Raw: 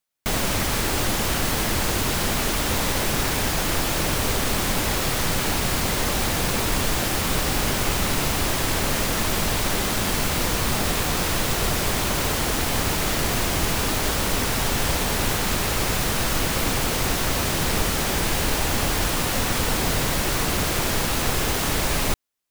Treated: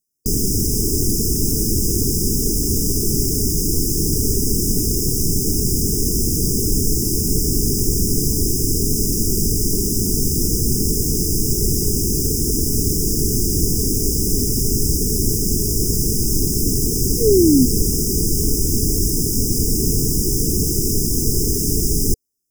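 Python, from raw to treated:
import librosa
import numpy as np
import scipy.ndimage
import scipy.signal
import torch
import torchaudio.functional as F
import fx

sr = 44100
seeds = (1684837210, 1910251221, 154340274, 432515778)

y = fx.spec_paint(x, sr, seeds[0], shape='fall', start_s=16.41, length_s=1.25, low_hz=240.0, high_hz=1600.0, level_db=-19.0)
y = fx.brickwall_bandstop(y, sr, low_hz=460.0, high_hz=4900.0)
y = y * 10.0 ** (6.5 / 20.0)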